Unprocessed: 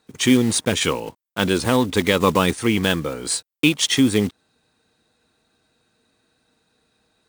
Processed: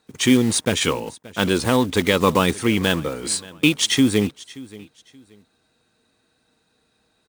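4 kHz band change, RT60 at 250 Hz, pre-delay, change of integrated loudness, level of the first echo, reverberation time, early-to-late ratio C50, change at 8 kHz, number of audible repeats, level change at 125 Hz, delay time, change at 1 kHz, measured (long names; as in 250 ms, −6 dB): 0.0 dB, no reverb audible, no reverb audible, 0.0 dB, −20.5 dB, no reverb audible, no reverb audible, 0.0 dB, 2, 0.0 dB, 578 ms, 0.0 dB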